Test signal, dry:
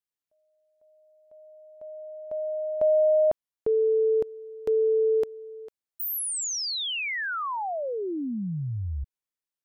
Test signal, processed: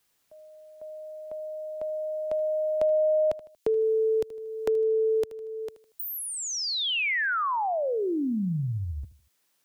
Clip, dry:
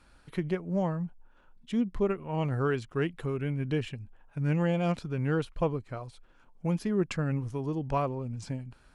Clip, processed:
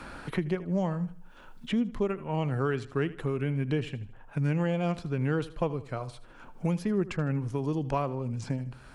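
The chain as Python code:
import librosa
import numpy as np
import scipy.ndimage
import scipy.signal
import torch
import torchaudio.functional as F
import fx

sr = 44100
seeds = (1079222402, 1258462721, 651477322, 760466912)

y = fx.echo_feedback(x, sr, ms=78, feedback_pct=32, wet_db=-17.5)
y = fx.band_squash(y, sr, depth_pct=70)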